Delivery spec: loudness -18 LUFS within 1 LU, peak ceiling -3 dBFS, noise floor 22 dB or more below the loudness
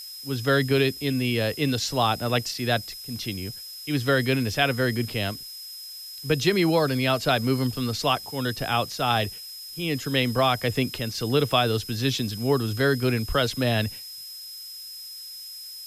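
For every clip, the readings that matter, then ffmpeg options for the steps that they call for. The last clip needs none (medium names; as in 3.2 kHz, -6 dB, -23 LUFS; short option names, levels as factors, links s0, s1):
steady tone 5.1 kHz; tone level -38 dBFS; noise floor -40 dBFS; noise floor target -47 dBFS; loudness -24.5 LUFS; peak level -6.5 dBFS; loudness target -18.0 LUFS
-> -af "bandreject=f=5100:w=30"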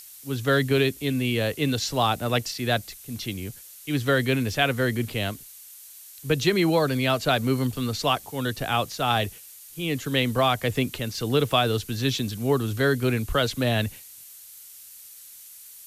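steady tone not found; noise floor -46 dBFS; noise floor target -47 dBFS
-> -af "afftdn=nr=6:nf=-46"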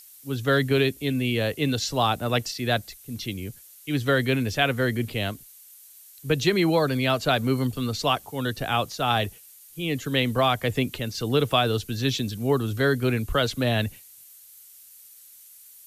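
noise floor -50 dBFS; loudness -25.0 LUFS; peak level -6.0 dBFS; loudness target -18.0 LUFS
-> -af "volume=2.24,alimiter=limit=0.708:level=0:latency=1"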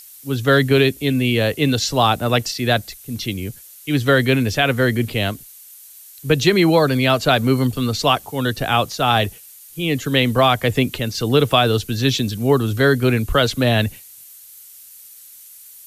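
loudness -18.0 LUFS; peak level -3.0 dBFS; noise floor -43 dBFS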